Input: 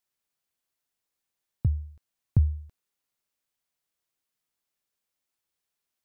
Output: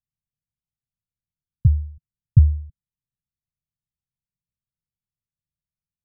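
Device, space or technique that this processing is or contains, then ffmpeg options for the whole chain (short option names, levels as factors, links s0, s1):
the neighbour's flat through the wall: -af "lowpass=f=160:w=0.5412,lowpass=f=160:w=1.3066,equalizer=f=150:t=o:w=0.77:g=3,volume=2.66"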